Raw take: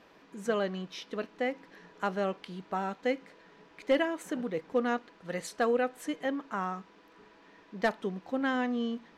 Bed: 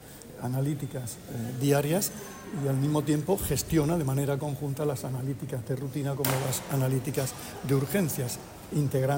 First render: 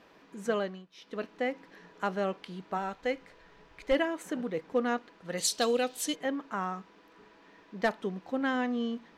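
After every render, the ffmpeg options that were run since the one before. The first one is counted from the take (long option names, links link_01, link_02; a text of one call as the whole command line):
ffmpeg -i in.wav -filter_complex "[0:a]asplit=3[link_01][link_02][link_03];[link_01]afade=type=out:start_time=2.77:duration=0.02[link_04];[link_02]asubboost=boost=11.5:cutoff=71,afade=type=in:start_time=2.77:duration=0.02,afade=type=out:start_time=3.92:duration=0.02[link_05];[link_03]afade=type=in:start_time=3.92:duration=0.02[link_06];[link_04][link_05][link_06]amix=inputs=3:normalize=0,asplit=3[link_07][link_08][link_09];[link_07]afade=type=out:start_time=5.37:duration=0.02[link_10];[link_08]highshelf=frequency=2600:width_type=q:width=1.5:gain=12.5,afade=type=in:start_time=5.37:duration=0.02,afade=type=out:start_time=6.14:duration=0.02[link_11];[link_09]afade=type=in:start_time=6.14:duration=0.02[link_12];[link_10][link_11][link_12]amix=inputs=3:normalize=0,asplit=3[link_13][link_14][link_15];[link_13]atrim=end=0.86,asetpts=PTS-STARTPTS,afade=type=out:start_time=0.56:duration=0.3:silence=0.141254[link_16];[link_14]atrim=start=0.86:end=0.92,asetpts=PTS-STARTPTS,volume=-17dB[link_17];[link_15]atrim=start=0.92,asetpts=PTS-STARTPTS,afade=type=in:duration=0.3:silence=0.141254[link_18];[link_16][link_17][link_18]concat=n=3:v=0:a=1" out.wav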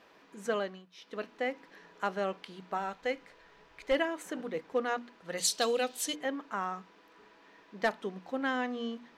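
ffmpeg -i in.wav -af "lowshelf=frequency=320:gain=-6.5,bandreject=frequency=60:width_type=h:width=6,bandreject=frequency=120:width_type=h:width=6,bandreject=frequency=180:width_type=h:width=6,bandreject=frequency=240:width_type=h:width=6,bandreject=frequency=300:width_type=h:width=6" out.wav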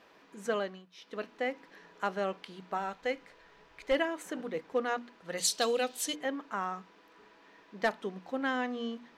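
ffmpeg -i in.wav -af anull out.wav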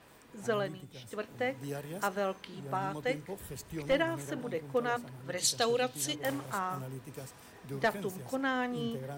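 ffmpeg -i in.wav -i bed.wav -filter_complex "[1:a]volume=-15.5dB[link_01];[0:a][link_01]amix=inputs=2:normalize=0" out.wav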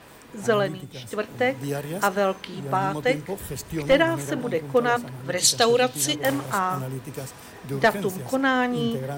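ffmpeg -i in.wav -af "volume=10.5dB" out.wav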